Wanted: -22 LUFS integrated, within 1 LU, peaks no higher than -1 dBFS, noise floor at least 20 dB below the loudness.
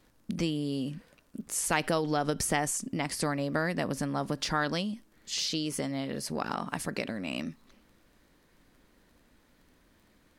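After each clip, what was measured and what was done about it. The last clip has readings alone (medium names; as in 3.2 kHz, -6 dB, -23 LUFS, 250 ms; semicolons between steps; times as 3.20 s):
tick rate 24 per s; loudness -31.5 LUFS; peak level -11.5 dBFS; loudness target -22.0 LUFS
-> de-click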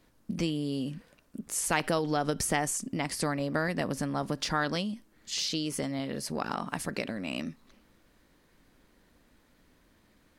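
tick rate 0.096 per s; loudness -31.5 LUFS; peak level -11.5 dBFS; loudness target -22.0 LUFS
-> trim +9.5 dB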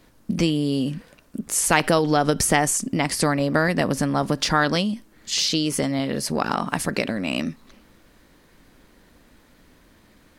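loudness -22.0 LUFS; peak level -2.0 dBFS; noise floor -56 dBFS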